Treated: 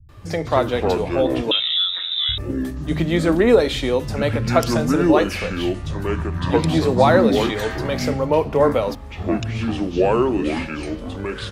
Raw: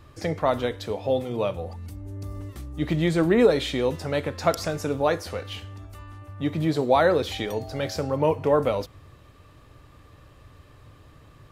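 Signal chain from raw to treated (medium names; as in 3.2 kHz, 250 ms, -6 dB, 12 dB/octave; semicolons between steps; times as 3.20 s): ever faster or slower copies 128 ms, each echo -6 st, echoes 2; 1.42–2.29 s: frequency inversion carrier 3.8 kHz; bands offset in time lows, highs 90 ms, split 160 Hz; trim +4.5 dB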